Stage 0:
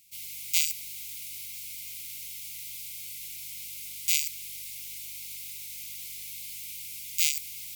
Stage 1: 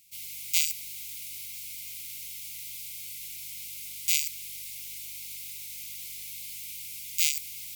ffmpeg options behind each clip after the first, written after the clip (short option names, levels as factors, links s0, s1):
-af "equalizer=f=680:w=4.5:g=3"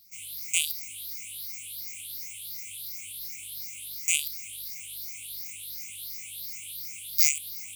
-af "afftfilt=real='re*pow(10,23/40*sin(2*PI*(0.6*log(max(b,1)*sr/1024/100)/log(2)-(2.8)*(pts-256)/sr)))':imag='im*pow(10,23/40*sin(2*PI*(0.6*log(max(b,1)*sr/1024/100)/log(2)-(2.8)*(pts-256)/sr)))':win_size=1024:overlap=0.75,volume=0.596"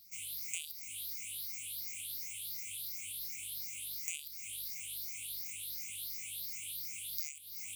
-af "acompressor=threshold=0.0158:ratio=5,volume=0.794"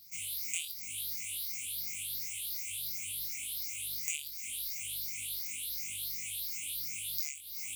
-af "flanger=delay=19:depth=5.2:speed=0.99,volume=2.37"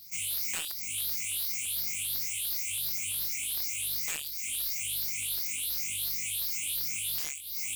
-af "aeval=exprs='0.0299*(abs(mod(val(0)/0.0299+3,4)-2)-1)':c=same,volume=2"